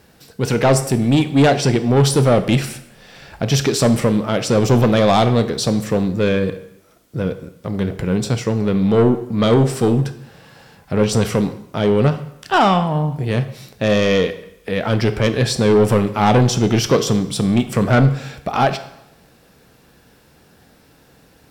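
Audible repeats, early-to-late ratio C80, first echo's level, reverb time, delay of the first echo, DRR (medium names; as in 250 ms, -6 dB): no echo, 15.0 dB, no echo, 0.85 s, no echo, 9.5 dB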